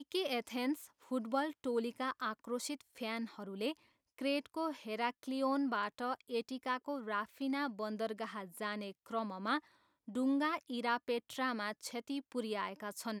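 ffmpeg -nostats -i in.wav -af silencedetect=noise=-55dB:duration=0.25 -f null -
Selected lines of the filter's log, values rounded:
silence_start: 3.77
silence_end: 4.18 | silence_duration: 0.42
silence_start: 9.66
silence_end: 10.08 | silence_duration: 0.42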